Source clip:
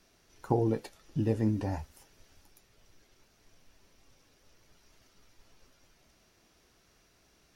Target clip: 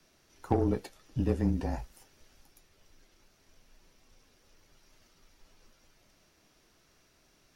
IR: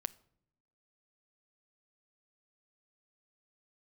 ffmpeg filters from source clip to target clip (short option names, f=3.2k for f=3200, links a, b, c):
-af "afreqshift=-26,aeval=exprs='0.251*(cos(1*acos(clip(val(0)/0.251,-1,1)))-cos(1*PI/2))+0.01*(cos(8*acos(clip(val(0)/0.251,-1,1)))-cos(8*PI/2))':c=same"